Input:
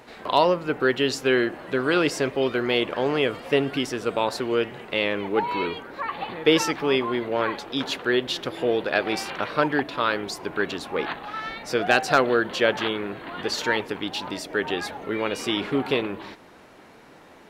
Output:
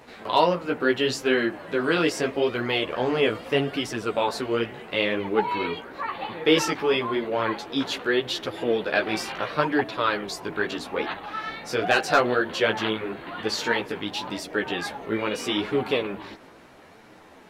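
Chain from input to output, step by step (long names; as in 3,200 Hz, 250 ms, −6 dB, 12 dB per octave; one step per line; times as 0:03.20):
multi-voice chorus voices 2, 0.76 Hz, delay 14 ms, depth 4.9 ms
level +2.5 dB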